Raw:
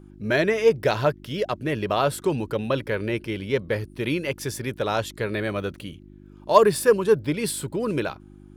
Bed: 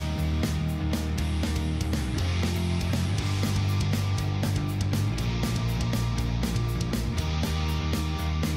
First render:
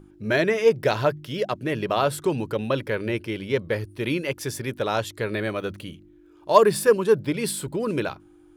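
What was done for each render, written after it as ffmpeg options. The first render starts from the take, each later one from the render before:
-af "bandreject=f=50:t=h:w=4,bandreject=f=100:t=h:w=4,bandreject=f=150:t=h:w=4,bandreject=f=200:t=h:w=4,bandreject=f=250:t=h:w=4"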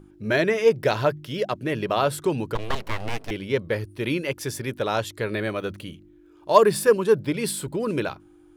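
-filter_complex "[0:a]asettb=1/sr,asplit=3[a][b][c];[a]atrim=end=2.554[d];[b]atrim=start=2.55:end=3.31,asetpts=PTS-STARTPTS,afade=t=in:d=0.004:c=qsin,afade=t=out:st=0.756:d=0.004:c=qsin,aeval=exprs='abs(val(0))':c=same[e];[c]atrim=start=3.306[f];[d][e]acrossfade=d=0.004:c1=hsin:c2=qsin[g];[g][f]acrossfade=d=0.004:c1=qsin:c2=hsin"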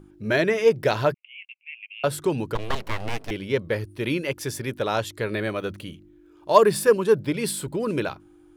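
-filter_complex "[0:a]asettb=1/sr,asplit=3[a][b][c];[a]atrim=end=1.144[d];[b]atrim=start=1.14:end=2.04,asetpts=PTS-STARTPTS,afade=t=in:d=0.004:c=qsin,afade=t=out:st=0.896:d=0.004:c=qsin,asuperpass=centerf=2500:order=8:qfactor=3.3[e];[c]atrim=start=2.036[f];[d][e]acrossfade=d=0.004:c1=hsin:c2=qsin[g];[g][f]acrossfade=d=0.004:c1=qsin:c2=hsin"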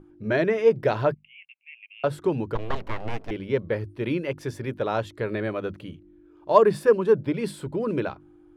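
-af "lowpass=f=1.4k:p=1,bandreject=f=50:t=h:w=6,bandreject=f=100:t=h:w=6,bandreject=f=150:t=h:w=6,bandreject=f=200:t=h:w=6,bandreject=f=250:t=h:w=6"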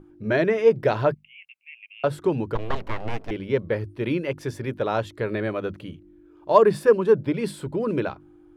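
-af "volume=1.5dB,alimiter=limit=-3dB:level=0:latency=1"

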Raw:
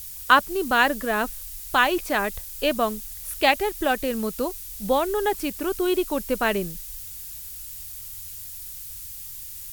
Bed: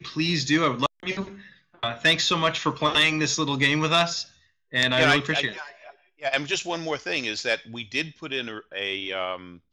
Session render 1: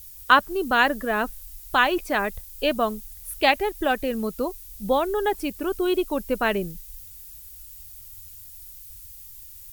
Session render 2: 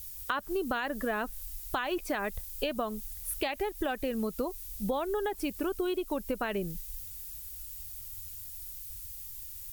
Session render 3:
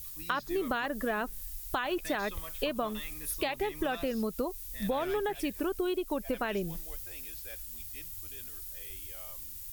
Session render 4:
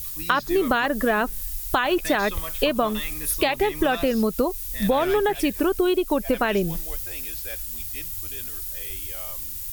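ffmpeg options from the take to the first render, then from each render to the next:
-af "afftdn=nr=9:nf=-38"
-af "alimiter=limit=-14dB:level=0:latency=1:release=111,acompressor=threshold=-28dB:ratio=10"
-filter_complex "[1:a]volume=-25dB[a];[0:a][a]amix=inputs=2:normalize=0"
-af "volume=10.5dB"

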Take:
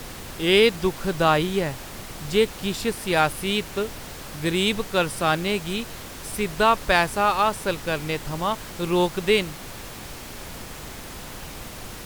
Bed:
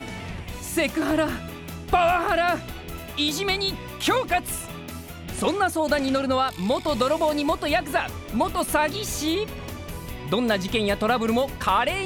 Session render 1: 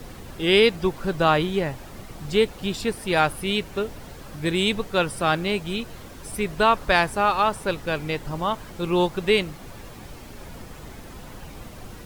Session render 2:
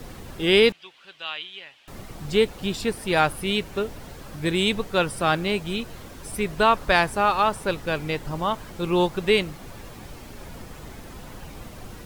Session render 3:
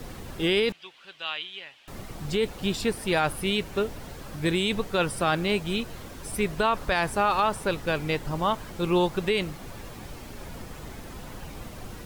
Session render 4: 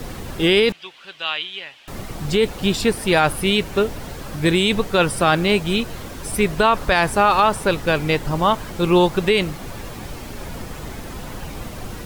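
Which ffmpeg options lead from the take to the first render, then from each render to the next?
-af "afftdn=nr=9:nf=-38"
-filter_complex "[0:a]asettb=1/sr,asplit=3[a][b][c];[a]atrim=end=0.724[d];[b]atrim=start=0.72:end=1.88,asetpts=PTS-STARTPTS,afade=t=in:d=0.004:c=qsin,afade=t=out:st=1.156:d=0.004:c=qsin,bandpass=f=3k:t=q:w=3.2[e];[c]atrim=start=1.876[f];[d][e]acrossfade=d=0.004:c1=hsin:c2=qsin[g];[g][f]acrossfade=d=0.004:c1=qsin:c2=hsin"
-af "alimiter=limit=-13.5dB:level=0:latency=1:release=31"
-af "volume=8dB"

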